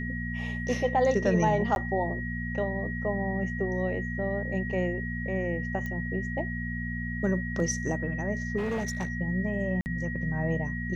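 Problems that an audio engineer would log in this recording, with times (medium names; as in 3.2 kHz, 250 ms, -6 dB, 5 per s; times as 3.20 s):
hum 60 Hz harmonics 4 -34 dBFS
whine 1.9 kHz -36 dBFS
1.75–1.76 s: dropout 11 ms
5.86 s: pop -23 dBFS
8.57–9.08 s: clipped -26.5 dBFS
9.81–9.86 s: dropout 49 ms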